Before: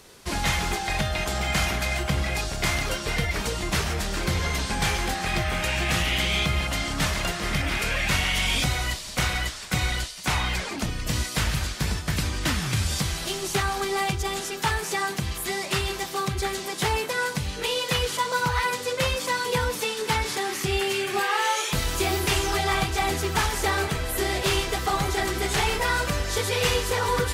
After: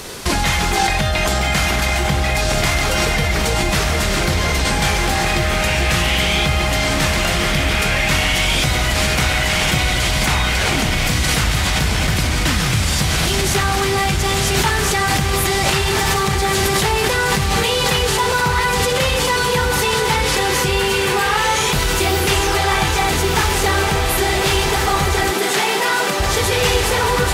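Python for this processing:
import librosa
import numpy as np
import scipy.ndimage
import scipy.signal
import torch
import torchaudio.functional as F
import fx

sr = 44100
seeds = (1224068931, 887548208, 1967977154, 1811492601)

p1 = fx.echo_diffused(x, sr, ms=1362, feedback_pct=71, wet_db=-6.5)
p2 = fx.over_compress(p1, sr, threshold_db=-32.0, ratio=-0.5)
p3 = p1 + (p2 * librosa.db_to_amplitude(2.0))
p4 = fx.highpass(p3, sr, hz=190.0, slope=24, at=(25.31, 26.2))
y = p4 * librosa.db_to_amplitude(5.0)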